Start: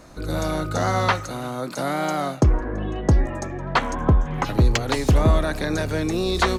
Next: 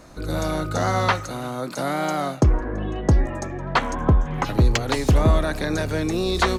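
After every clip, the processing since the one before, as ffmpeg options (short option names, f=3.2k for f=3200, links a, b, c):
-af anull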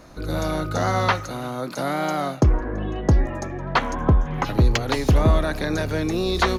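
-af "equalizer=f=8.1k:w=4.4:g=-11"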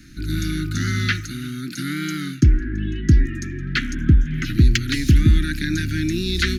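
-af "asuperstop=centerf=710:order=12:qfactor=0.61,volume=3.5dB"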